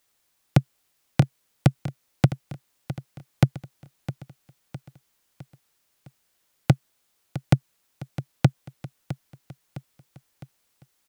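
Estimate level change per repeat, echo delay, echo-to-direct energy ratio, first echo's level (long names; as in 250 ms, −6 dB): −6.0 dB, 659 ms, −12.5 dB, −14.0 dB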